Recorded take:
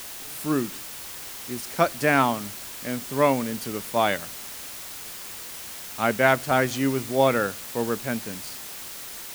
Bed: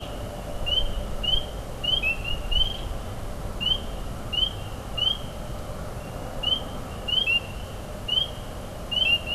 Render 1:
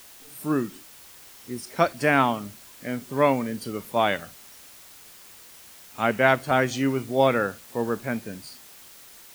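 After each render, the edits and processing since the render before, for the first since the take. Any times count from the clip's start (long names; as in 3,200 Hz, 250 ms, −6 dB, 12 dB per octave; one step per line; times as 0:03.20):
noise reduction from a noise print 10 dB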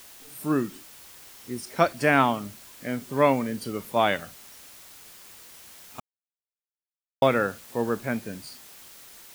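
0:06.00–0:07.22: silence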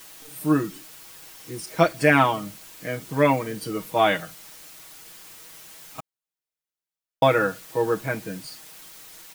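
comb filter 6.3 ms, depth 96%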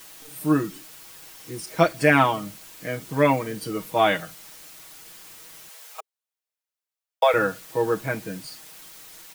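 0:05.69–0:07.34: Butterworth high-pass 420 Hz 96 dB per octave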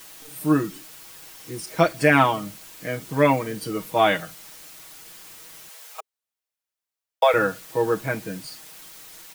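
level +1 dB
brickwall limiter −3 dBFS, peak gain reduction 1.5 dB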